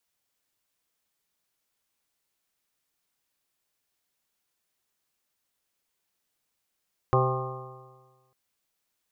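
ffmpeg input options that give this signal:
ffmpeg -f lavfi -i "aevalsrc='0.0841*pow(10,-3*t/1.4)*sin(2*PI*128.09*t)+0.01*pow(10,-3*t/1.4)*sin(2*PI*256.72*t)+0.0596*pow(10,-3*t/1.4)*sin(2*PI*386.41*t)+0.0531*pow(10,-3*t/1.4)*sin(2*PI*517.7*t)+0.0188*pow(10,-3*t/1.4)*sin(2*PI*651.1*t)+0.0501*pow(10,-3*t/1.4)*sin(2*PI*787.12*t)+0.00944*pow(10,-3*t/1.4)*sin(2*PI*926.22*t)+0.0596*pow(10,-3*t/1.4)*sin(2*PI*1068.89*t)+0.0422*pow(10,-3*t/1.4)*sin(2*PI*1215.56*t)':duration=1.2:sample_rate=44100" out.wav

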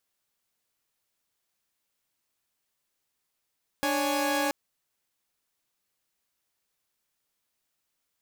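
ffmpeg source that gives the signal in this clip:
ffmpeg -f lavfi -i "aevalsrc='0.0447*((2*mod(293.66*t,1)-1)+(2*mod(554.37*t,1)-1)+(2*mod(830.61*t,1)-1))':duration=0.68:sample_rate=44100" out.wav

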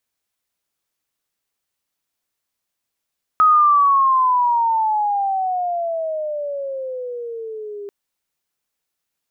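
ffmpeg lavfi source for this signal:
ffmpeg -f lavfi -i "aevalsrc='pow(10,(-9-19.5*t/4.49)/20)*sin(2*PI*1270*4.49/(-20*log(2)/12)*(exp(-20*log(2)/12*t/4.49)-1))':duration=4.49:sample_rate=44100" out.wav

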